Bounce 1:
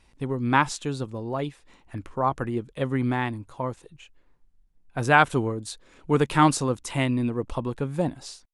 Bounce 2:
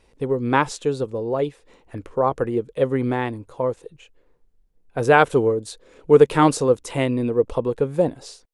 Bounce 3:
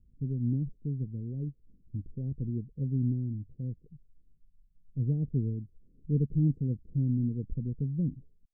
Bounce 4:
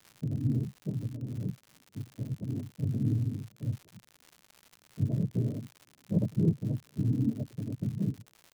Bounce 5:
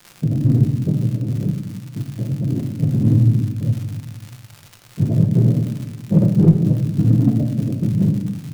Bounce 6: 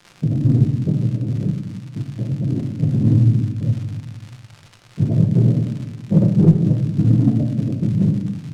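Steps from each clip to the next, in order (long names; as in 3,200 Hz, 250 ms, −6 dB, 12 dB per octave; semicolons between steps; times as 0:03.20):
parametric band 470 Hz +13.5 dB 0.67 octaves
inverse Chebyshev low-pass filter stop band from 920 Hz, stop band 70 dB
cochlear-implant simulation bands 12; surface crackle 150 per second −40 dBFS
in parallel at −4 dB: hard clipping −24.5 dBFS, distortion −13 dB; on the sum: rectangular room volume 570 cubic metres, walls mixed, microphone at 0.86 metres; level +8 dB
log-companded quantiser 8 bits; high-frequency loss of the air 62 metres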